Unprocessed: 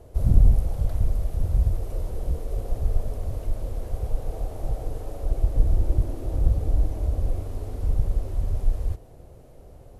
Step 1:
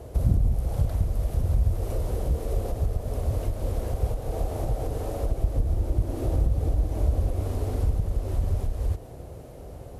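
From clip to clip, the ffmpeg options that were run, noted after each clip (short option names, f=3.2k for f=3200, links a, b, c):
-af "acompressor=threshold=-25dB:ratio=3,highpass=45,volume=7.5dB"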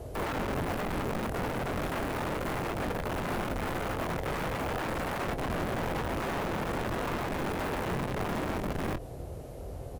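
-filter_complex "[0:a]aeval=exprs='(mod(22.4*val(0)+1,2)-1)/22.4':c=same,acrossover=split=2900[a][b];[b]acompressor=threshold=-44dB:ratio=4:attack=1:release=60[c];[a][c]amix=inputs=2:normalize=0,asplit=2[d][e];[e]adelay=23,volume=-10.5dB[f];[d][f]amix=inputs=2:normalize=0"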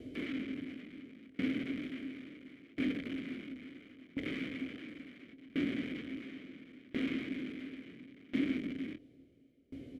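-filter_complex "[0:a]asplit=3[a][b][c];[a]bandpass=f=270:t=q:w=8,volume=0dB[d];[b]bandpass=f=2.29k:t=q:w=8,volume=-6dB[e];[c]bandpass=f=3.01k:t=q:w=8,volume=-9dB[f];[d][e][f]amix=inputs=3:normalize=0,aeval=exprs='val(0)*pow(10,-25*if(lt(mod(0.72*n/s,1),2*abs(0.72)/1000),1-mod(0.72*n/s,1)/(2*abs(0.72)/1000),(mod(0.72*n/s,1)-2*abs(0.72)/1000)/(1-2*abs(0.72)/1000))/20)':c=same,volume=12dB"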